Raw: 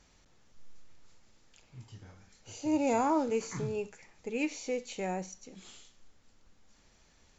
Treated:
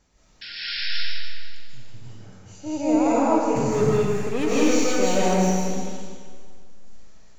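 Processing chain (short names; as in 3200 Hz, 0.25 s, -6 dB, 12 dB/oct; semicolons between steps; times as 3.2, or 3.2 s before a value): bell 3000 Hz -4.5 dB 2.3 oct; 0.41–0.86 painted sound noise 1400–5500 Hz -37 dBFS; 3.56–5.59 sample leveller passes 3; digital reverb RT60 1.9 s, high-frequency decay 0.95×, pre-delay 0.115 s, DRR -8.5 dB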